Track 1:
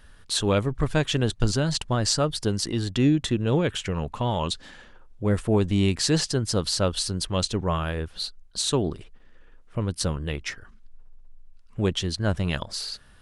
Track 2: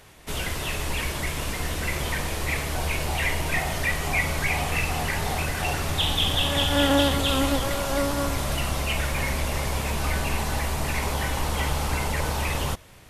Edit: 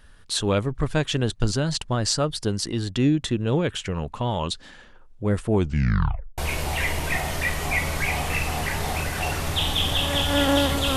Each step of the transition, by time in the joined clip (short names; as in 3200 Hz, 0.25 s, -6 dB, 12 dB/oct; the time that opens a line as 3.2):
track 1
5.54 tape stop 0.84 s
6.38 switch to track 2 from 2.8 s